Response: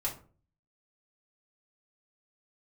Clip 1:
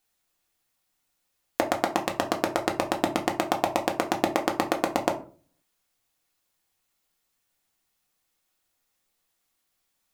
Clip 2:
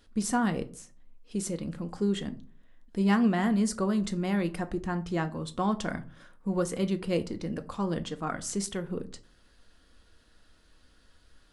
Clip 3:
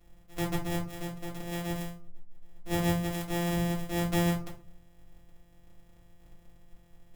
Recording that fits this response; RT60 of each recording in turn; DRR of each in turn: 3; 0.40, 0.45, 0.40 seconds; 1.5, 7.5, −4.5 decibels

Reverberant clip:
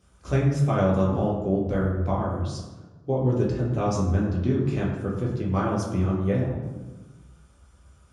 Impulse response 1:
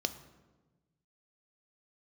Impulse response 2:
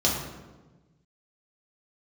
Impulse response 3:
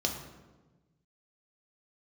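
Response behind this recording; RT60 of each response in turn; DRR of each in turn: 2; 1.2, 1.2, 1.2 seconds; 9.0, −4.5, 1.0 decibels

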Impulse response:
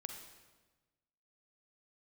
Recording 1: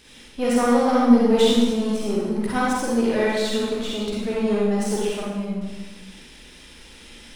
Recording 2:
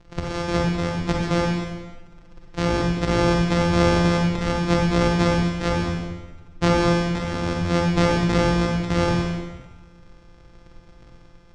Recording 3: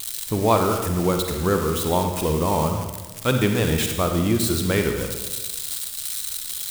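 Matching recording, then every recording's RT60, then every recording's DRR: 3; 1.2, 1.2, 1.2 seconds; −6.0, −1.0, 4.0 decibels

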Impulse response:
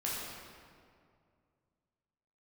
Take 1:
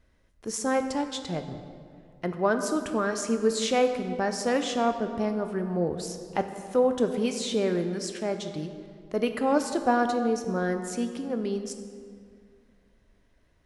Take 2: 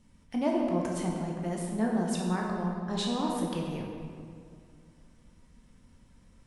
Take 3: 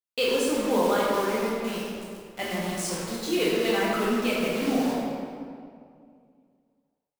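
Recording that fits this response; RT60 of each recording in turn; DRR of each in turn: 3; 2.3, 2.3, 2.3 seconds; 6.5, −1.5, −6.5 decibels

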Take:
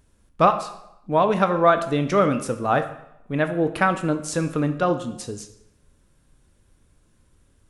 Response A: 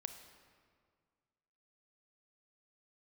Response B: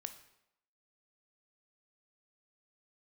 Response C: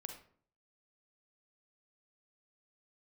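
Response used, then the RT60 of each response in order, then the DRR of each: B; 1.9, 0.85, 0.55 seconds; 7.5, 8.0, 4.5 decibels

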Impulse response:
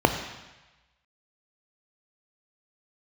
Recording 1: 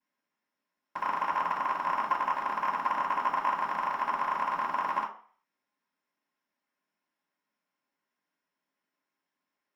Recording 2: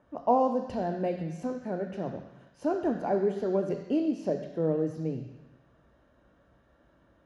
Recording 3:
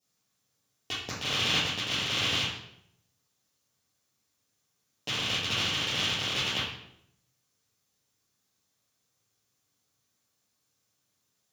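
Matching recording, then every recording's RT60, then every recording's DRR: 2; 0.45, 1.1, 0.75 seconds; −14.0, 6.5, −8.0 decibels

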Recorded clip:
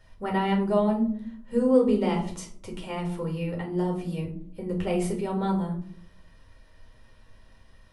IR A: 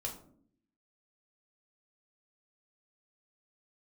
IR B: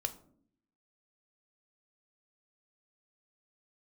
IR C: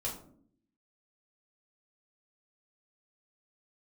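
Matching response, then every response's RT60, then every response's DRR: A; 0.60, 0.60, 0.60 seconds; −0.5, 8.0, −5.0 decibels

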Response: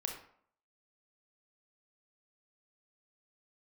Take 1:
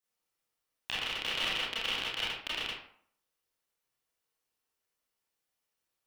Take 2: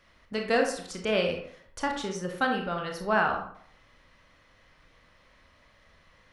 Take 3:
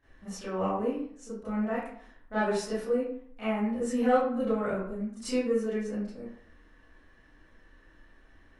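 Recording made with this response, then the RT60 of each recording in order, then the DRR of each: 2; 0.60, 0.60, 0.60 seconds; −8.0, 2.0, −15.5 decibels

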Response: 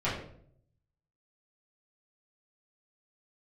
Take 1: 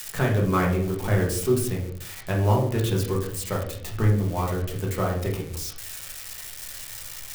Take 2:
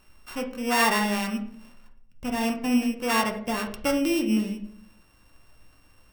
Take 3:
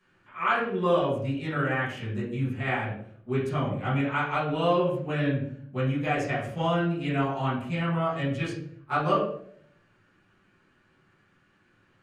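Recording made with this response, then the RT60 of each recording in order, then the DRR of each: 3; 0.60, 0.65, 0.60 seconds; −2.5, 3.0, −10.5 decibels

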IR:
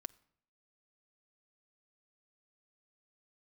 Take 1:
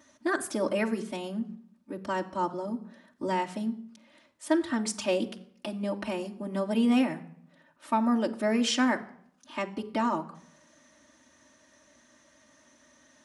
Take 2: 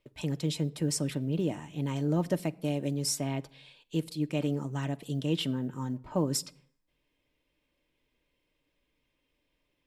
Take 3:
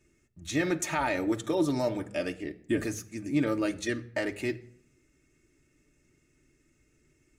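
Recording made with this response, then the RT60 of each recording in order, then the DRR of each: 2; non-exponential decay, non-exponential decay, non-exponential decay; −4.0, 8.5, 2.5 decibels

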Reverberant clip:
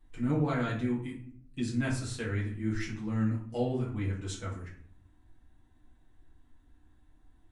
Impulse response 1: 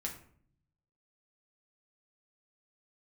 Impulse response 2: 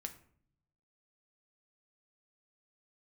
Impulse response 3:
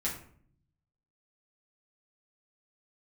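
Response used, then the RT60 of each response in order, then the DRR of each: 3; 0.55, 0.55, 0.55 seconds; −1.0, 5.0, −6.5 decibels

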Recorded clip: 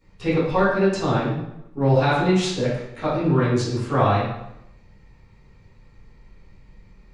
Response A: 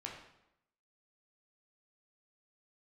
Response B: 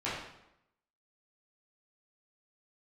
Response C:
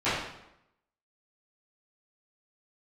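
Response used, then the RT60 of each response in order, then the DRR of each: C; 0.85, 0.85, 0.85 seconds; −1.5, −10.5, −17.0 decibels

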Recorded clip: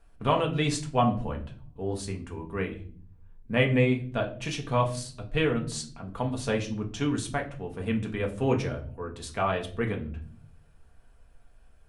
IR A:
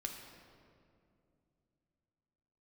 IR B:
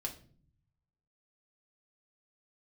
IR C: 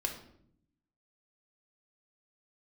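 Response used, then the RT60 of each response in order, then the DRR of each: B; 2.5, 0.45, 0.65 seconds; 1.5, 1.0, 2.5 decibels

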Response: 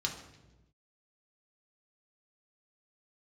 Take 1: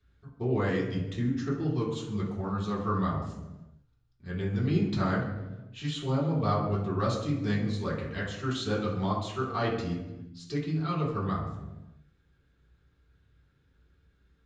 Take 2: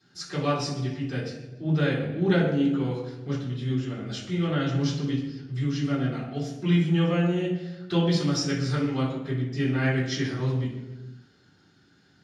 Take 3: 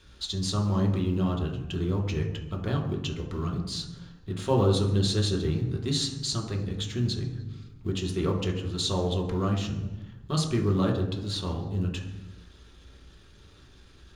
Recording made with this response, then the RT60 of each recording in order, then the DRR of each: 3; 1.1, 1.1, 1.1 seconds; −7.5, −14.0, −0.5 decibels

